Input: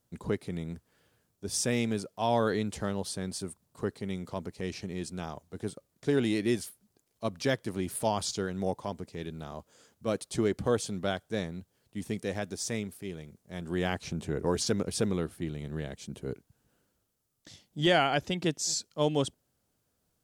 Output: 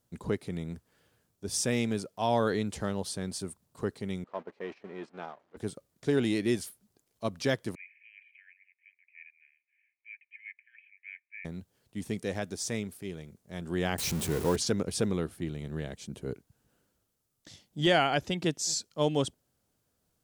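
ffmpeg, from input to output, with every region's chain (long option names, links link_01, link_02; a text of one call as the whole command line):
ffmpeg -i in.wav -filter_complex "[0:a]asettb=1/sr,asplit=3[link_01][link_02][link_03];[link_01]atrim=end=4.244[link_04];[link_02]atrim=start=4.24:end=5.57,asetpts=PTS-STARTPTS,afade=type=in:duration=0.004:curve=qsin,afade=type=out:start_time=1.326:duration=0.004:curve=qsin,aeval=exprs='val(0)+0.5*0.00944*sgn(val(0))':channel_layout=same,agate=range=-17dB:threshold=-37dB:ratio=16:release=100:detection=peak,highpass=380,lowpass=2100[link_05];[link_03]atrim=start=5.566[link_06];[link_04][link_05]acrossfade=duration=0.004:curve1=hsin:curve2=qsin[link_07];[link_07][link_06]acrossfade=duration=0.004:curve1=qsin:curve2=hsin,asettb=1/sr,asplit=3[link_08][link_09][link_10];[link_08]atrim=end=7.754[link_11];[link_09]atrim=start=7.75:end=11.45,asetpts=PTS-STARTPTS,afade=type=in:duration=0.004:curve=qsin,afade=type=out:start_time=3.696:duration=0.004:curve=qsin,asuperpass=centerf=2200:order=12:qfactor=2.6,aecho=1:1:1.3:0.85,atrim=end_sample=163170[link_12];[link_10]atrim=start=11.446[link_13];[link_11][link_12]acrossfade=duration=0.004:curve1=hsin:curve2=qsin[link_14];[link_14][link_13]acrossfade=duration=0.004:curve1=qsin:curve2=hsin,asettb=1/sr,asplit=3[link_15][link_16][link_17];[link_15]atrim=end=13.984[link_18];[link_16]atrim=start=13.98:end=14.56,asetpts=PTS-STARTPTS,afade=type=in:duration=0.004:curve=qsin,afade=type=out:start_time=0.576:duration=0.004:curve=qsin,aeval=exprs='val(0)+0.5*0.0178*sgn(val(0))':channel_layout=same,highshelf=frequency=5500:gain=10[link_19];[link_17]atrim=start=14.556[link_20];[link_18][link_19]acrossfade=duration=0.004:curve1=hsin:curve2=qsin[link_21];[link_21][link_20]acrossfade=duration=0.004:curve1=qsin:curve2=hsin" out.wav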